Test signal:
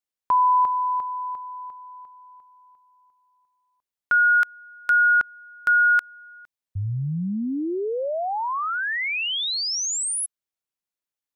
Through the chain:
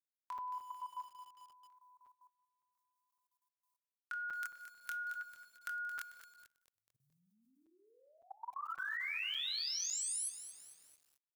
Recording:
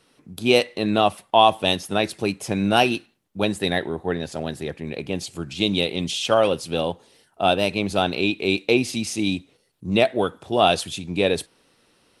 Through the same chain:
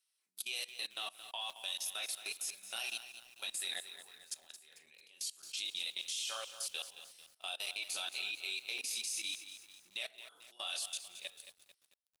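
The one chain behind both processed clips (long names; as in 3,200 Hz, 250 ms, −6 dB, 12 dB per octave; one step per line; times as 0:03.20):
fade-out on the ending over 2.40 s
multi-voice chorus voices 2, 0.54 Hz, delay 24 ms, depth 2 ms
downward compressor 5 to 1, threshold −22 dBFS
first difference
rectangular room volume 730 cubic metres, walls furnished, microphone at 1.1 metres
output level in coarse steps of 22 dB
high-pass filter 1,100 Hz 6 dB per octave
on a send: single-tap delay 179 ms −22 dB
on the sum: regular buffer underruns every 0.56 s, samples 256, zero, from 0:00.38
feedback echo at a low word length 222 ms, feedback 55%, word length 10 bits, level −11 dB
level +5 dB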